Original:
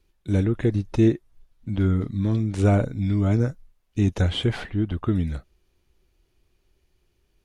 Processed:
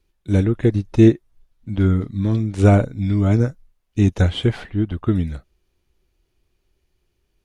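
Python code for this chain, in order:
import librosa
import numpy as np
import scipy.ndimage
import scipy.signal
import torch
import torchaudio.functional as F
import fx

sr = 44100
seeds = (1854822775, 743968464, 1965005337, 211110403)

y = fx.upward_expand(x, sr, threshold_db=-31.0, expansion=1.5)
y = y * librosa.db_to_amplitude(7.0)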